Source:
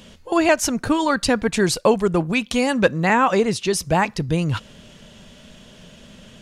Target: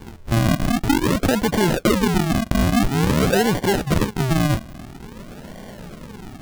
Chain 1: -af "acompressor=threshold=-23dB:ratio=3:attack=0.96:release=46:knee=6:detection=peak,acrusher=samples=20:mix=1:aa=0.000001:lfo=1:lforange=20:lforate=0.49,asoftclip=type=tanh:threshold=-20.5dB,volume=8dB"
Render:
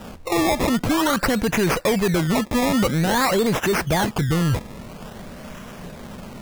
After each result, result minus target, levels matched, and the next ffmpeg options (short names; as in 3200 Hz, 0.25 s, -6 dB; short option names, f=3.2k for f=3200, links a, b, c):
soft clip: distortion +16 dB; decimation with a swept rate: distortion -13 dB
-af "acompressor=threshold=-23dB:ratio=3:attack=0.96:release=46:knee=6:detection=peak,acrusher=samples=20:mix=1:aa=0.000001:lfo=1:lforange=20:lforate=0.49,asoftclip=type=tanh:threshold=-10.5dB,volume=8dB"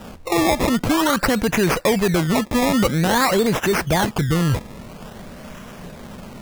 decimation with a swept rate: distortion -13 dB
-af "acompressor=threshold=-23dB:ratio=3:attack=0.96:release=46:knee=6:detection=peak,acrusher=samples=67:mix=1:aa=0.000001:lfo=1:lforange=67:lforate=0.49,asoftclip=type=tanh:threshold=-10.5dB,volume=8dB"